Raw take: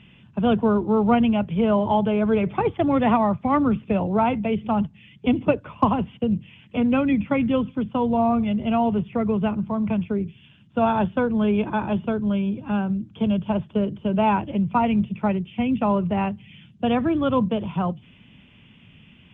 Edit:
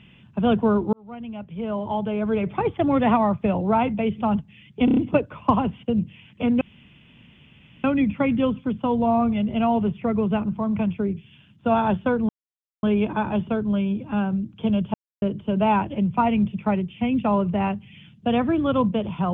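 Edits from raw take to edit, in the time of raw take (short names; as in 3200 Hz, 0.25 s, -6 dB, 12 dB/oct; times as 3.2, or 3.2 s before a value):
0.93–2.88 fade in
3.44–3.9 cut
5.31 stutter 0.03 s, 5 plays
6.95 insert room tone 1.23 s
11.4 insert silence 0.54 s
13.51–13.79 mute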